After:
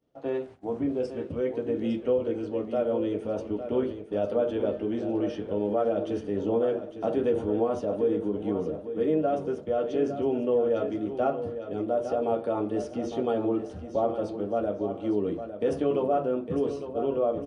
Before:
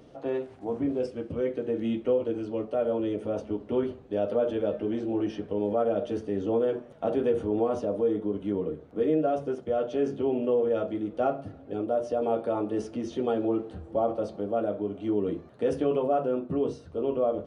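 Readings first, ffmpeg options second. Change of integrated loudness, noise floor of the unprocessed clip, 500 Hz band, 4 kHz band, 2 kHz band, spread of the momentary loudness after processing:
+0.5 dB, −49 dBFS, +0.5 dB, can't be measured, +0.5 dB, 5 LU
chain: -filter_complex "[0:a]agate=range=-33dB:threshold=-39dB:ratio=3:detection=peak,asplit=2[link_01][link_02];[link_02]aecho=0:1:856|1712|2568:0.316|0.0885|0.0248[link_03];[link_01][link_03]amix=inputs=2:normalize=0"

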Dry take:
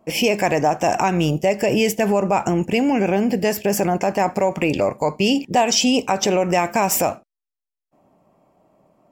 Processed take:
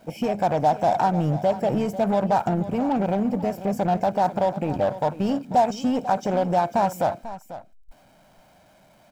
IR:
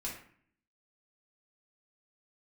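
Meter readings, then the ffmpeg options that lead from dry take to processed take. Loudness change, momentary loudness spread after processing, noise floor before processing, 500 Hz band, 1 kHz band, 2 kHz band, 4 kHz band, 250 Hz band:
−4.0 dB, 5 LU, −85 dBFS, −4.0 dB, −1.0 dB, −12.0 dB, −16.5 dB, −4.5 dB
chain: -filter_complex "[0:a]aeval=exprs='val(0)+0.5*0.0398*sgn(val(0))':channel_layout=same,afwtdn=0.112,aecho=1:1:1.3:0.52,asplit=2[link_01][link_02];[link_02]acrusher=bits=2:mix=0:aa=0.5,volume=-10.5dB[link_03];[link_01][link_03]amix=inputs=2:normalize=0,aecho=1:1:493:0.188,volume=-7dB"

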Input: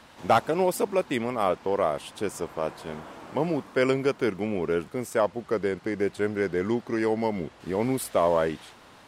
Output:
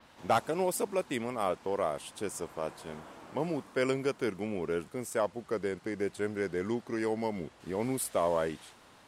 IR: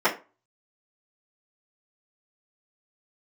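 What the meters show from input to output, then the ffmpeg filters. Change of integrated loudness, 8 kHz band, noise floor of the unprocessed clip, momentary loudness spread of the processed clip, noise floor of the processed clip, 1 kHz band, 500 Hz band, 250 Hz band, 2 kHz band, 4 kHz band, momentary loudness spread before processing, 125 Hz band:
−6.5 dB, −0.5 dB, −52 dBFS, 8 LU, −58 dBFS, −6.5 dB, −6.5 dB, −6.5 dB, −6.0 dB, −5.0 dB, 9 LU, −6.5 dB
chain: -af "adynamicequalizer=threshold=0.002:dfrequency=9200:dqfactor=0.82:tfrequency=9200:tqfactor=0.82:attack=5:release=100:ratio=0.375:range=3.5:mode=boostabove:tftype=bell,volume=-6.5dB"

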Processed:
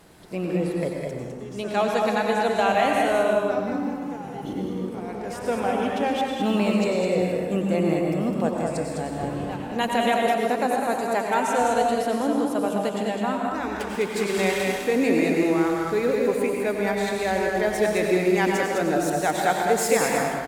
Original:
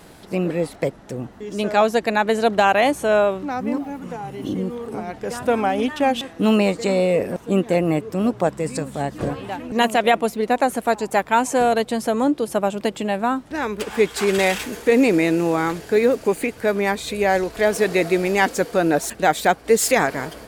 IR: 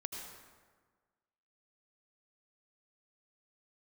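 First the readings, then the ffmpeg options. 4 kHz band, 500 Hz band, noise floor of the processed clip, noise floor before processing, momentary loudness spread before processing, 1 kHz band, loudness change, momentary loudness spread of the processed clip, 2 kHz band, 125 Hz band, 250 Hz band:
−4.0 dB, −3.5 dB, −34 dBFS, −43 dBFS, 10 LU, −3.0 dB, −3.5 dB, 9 LU, −4.0 dB, −2.5 dB, −2.5 dB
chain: -filter_complex "[0:a]aecho=1:1:206:0.562[link_01];[1:a]atrim=start_sample=2205,afade=type=out:start_time=0.34:duration=0.01,atrim=end_sample=15435,asetrate=38808,aresample=44100[link_02];[link_01][link_02]afir=irnorm=-1:irlink=0,volume=-4.5dB"

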